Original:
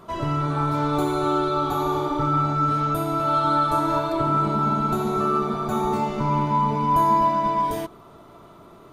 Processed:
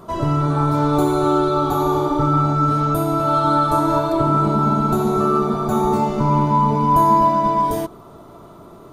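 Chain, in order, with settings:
parametric band 2,400 Hz −7.5 dB 1.7 octaves
level +6.5 dB

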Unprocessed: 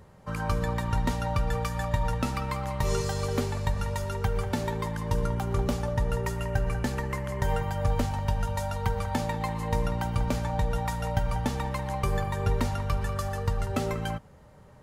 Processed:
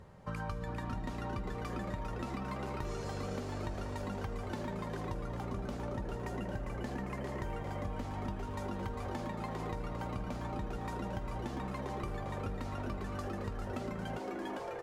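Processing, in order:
high-shelf EQ 7,800 Hz −10 dB
on a send: echo with shifted repeats 400 ms, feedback 57%, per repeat +150 Hz, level −6 dB
on the sum: downward compressor, threshold −34 dBFS, peak gain reduction 13.5 dB
level −2 dB

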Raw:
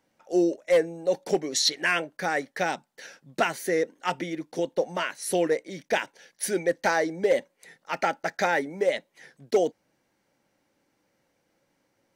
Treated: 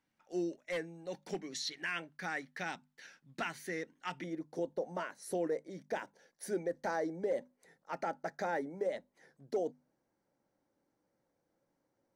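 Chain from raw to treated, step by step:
parametric band 530 Hz −11.5 dB 1.3 octaves, from 0:04.24 2,700 Hz
brickwall limiter −19 dBFS, peak gain reduction 6 dB
high-shelf EQ 5,400 Hz −9.5 dB
mains-hum notches 50/100/150/200/250 Hz
level −7 dB

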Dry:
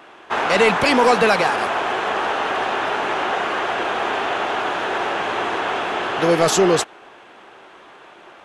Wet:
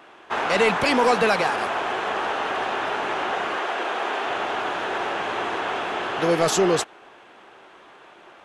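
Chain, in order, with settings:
0:03.56–0:04.27: high-pass filter 260 Hz 12 dB per octave
level −4 dB

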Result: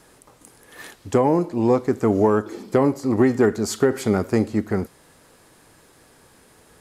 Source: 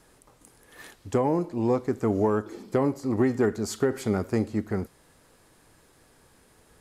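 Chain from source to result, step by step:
low-shelf EQ 65 Hz −9 dB
level +6.5 dB

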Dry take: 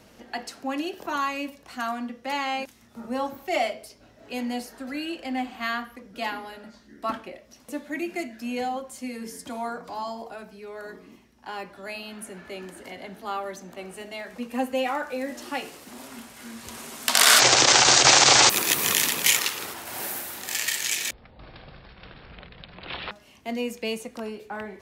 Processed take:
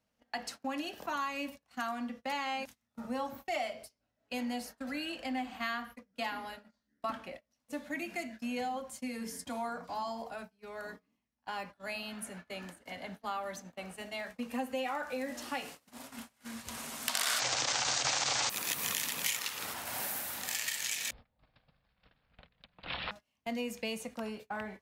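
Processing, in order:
noise gate −41 dBFS, range −25 dB
parametric band 370 Hz −12 dB 0.36 octaves
downward compressor 3 to 1, threshold −31 dBFS, peak gain reduction 14 dB
level −2.5 dB

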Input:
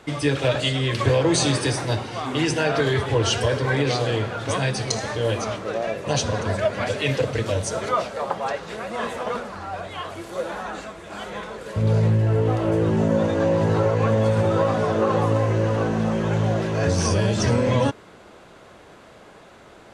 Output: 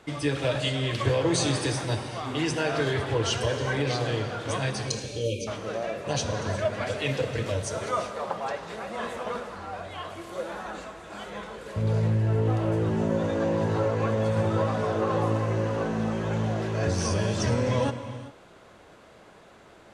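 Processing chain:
time-frequency box erased 0:04.88–0:05.47, 590–2,200 Hz
reverb whose tail is shaped and stops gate 430 ms flat, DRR 9 dB
level −5.5 dB

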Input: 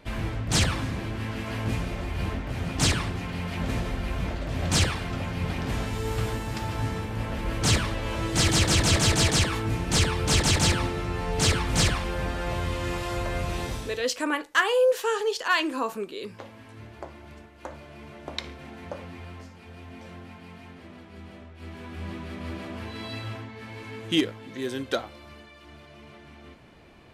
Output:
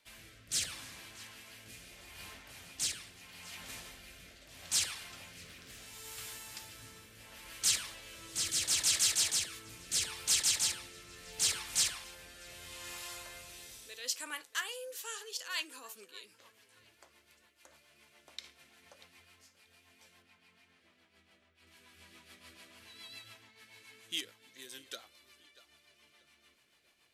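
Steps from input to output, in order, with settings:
0:20.22–0:21.67: high-shelf EQ 5,400 Hz −10.5 dB
tape delay 636 ms, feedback 45%, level −19 dB, low-pass 4,400 Hz
rotating-speaker cabinet horn 0.75 Hz, later 7 Hz, at 0:14.78
first-order pre-emphasis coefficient 0.97
0:05.41–0:05.82: highs frequency-modulated by the lows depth 0.28 ms

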